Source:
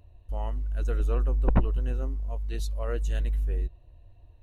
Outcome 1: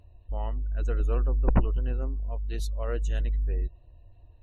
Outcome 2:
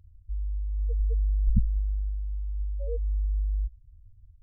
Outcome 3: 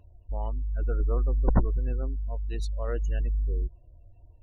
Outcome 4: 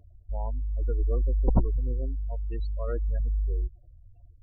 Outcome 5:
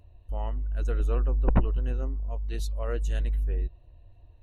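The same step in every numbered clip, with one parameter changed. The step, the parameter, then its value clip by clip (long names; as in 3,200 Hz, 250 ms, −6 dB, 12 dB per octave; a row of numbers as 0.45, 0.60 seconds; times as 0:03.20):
gate on every frequency bin, under each frame's peak: −50, −10, −35, −25, −60 decibels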